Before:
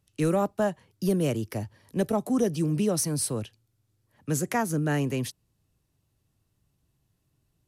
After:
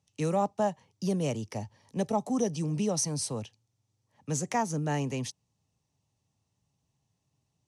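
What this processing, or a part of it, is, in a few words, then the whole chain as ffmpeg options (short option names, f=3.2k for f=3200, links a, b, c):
car door speaker: -af "highpass=92,equalizer=f=340:t=q:w=4:g=-7,equalizer=f=850:t=q:w=4:g=7,equalizer=f=1.5k:t=q:w=4:g=-8,equalizer=f=6k:t=q:w=4:g=7,lowpass=f=8.9k:w=0.5412,lowpass=f=8.9k:w=1.3066,volume=-3dB"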